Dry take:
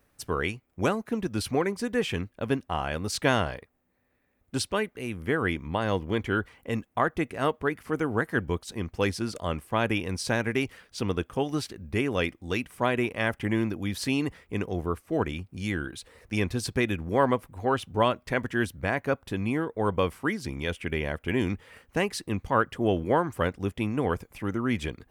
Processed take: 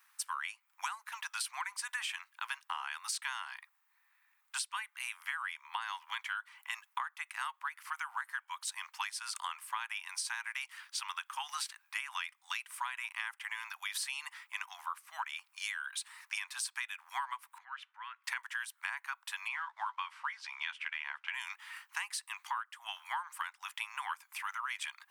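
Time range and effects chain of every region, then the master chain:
17.58–18.24 s: compression 2.5:1, threshold -41 dBFS + band-pass filter 1.8 kHz, Q 2
19.48–21.33 s: companded quantiser 8-bit + low-pass 3.9 kHz + doubling 14 ms -10 dB
whole clip: steep high-pass 890 Hz 72 dB/octave; dynamic bell 8.7 kHz, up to +7 dB, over -59 dBFS, Q 3; compression 16:1, threshold -39 dBFS; trim +4.5 dB

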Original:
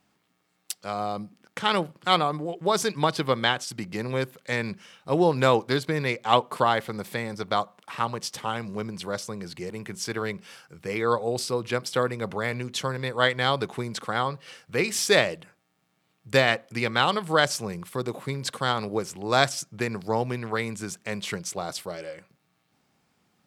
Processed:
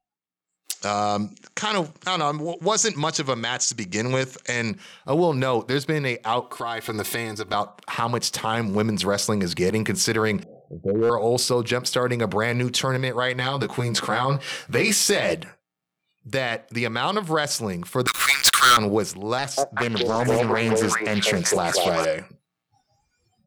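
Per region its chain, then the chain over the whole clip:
0.72–4.70 s: resonant low-pass 6.8 kHz, resonance Q 9.9 + peaking EQ 2.2 kHz +3 dB 1.4 oct
6.42–7.54 s: treble shelf 2.7 kHz +4.5 dB + comb 2.8 ms, depth 67% + compression 2:1, threshold -41 dBFS
10.43–11.10 s: steep low-pass 730 Hz 96 dB/octave + hard clipper -24.5 dBFS
13.38–15.33 s: compression 3:1, threshold -26 dBFS + doubling 15 ms -3 dB
18.07–18.77 s: steep high-pass 1.2 kHz 72 dB/octave + waveshaping leveller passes 5
19.38–22.05 s: repeats whose band climbs or falls 193 ms, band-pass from 510 Hz, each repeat 1.4 oct, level 0 dB + loudspeaker Doppler distortion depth 0.43 ms
whole clip: spectral noise reduction 27 dB; level rider gain up to 16 dB; peak limiter -10.5 dBFS

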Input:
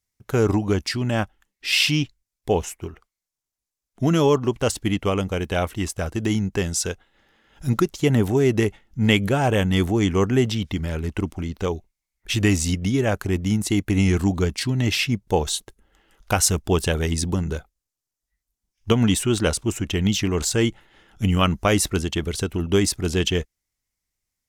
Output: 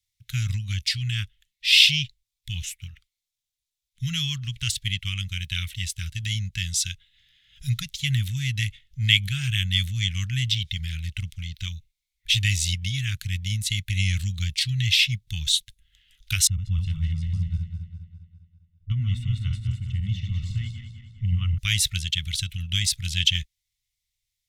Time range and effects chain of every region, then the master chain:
16.47–21.58 s: backward echo that repeats 101 ms, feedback 72%, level -5 dB + Savitzky-Golay filter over 65 samples + tape noise reduction on one side only decoder only
whole clip: Chebyshev band-stop 130–2100 Hz, order 3; peaking EQ 3.6 kHz +11 dB 0.63 oct; trim -1 dB

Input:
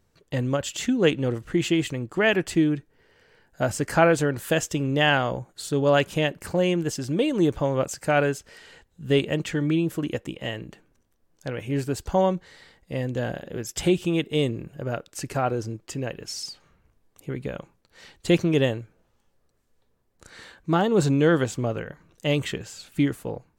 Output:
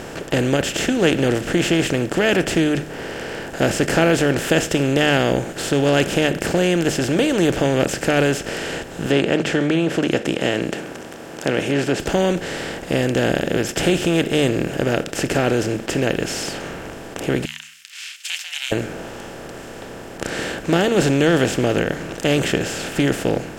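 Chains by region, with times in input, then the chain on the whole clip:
9.06–12.00 s: high-pass 190 Hz + low-pass that closes with the level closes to 2.8 kHz, closed at -22 dBFS
17.45–18.72 s: ring modulator 400 Hz + steep high-pass 2.5 kHz 48 dB/octave
whole clip: spectral levelling over time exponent 0.4; de-hum 75.6 Hz, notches 3; dynamic bell 1 kHz, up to -7 dB, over -34 dBFS, Q 1.4

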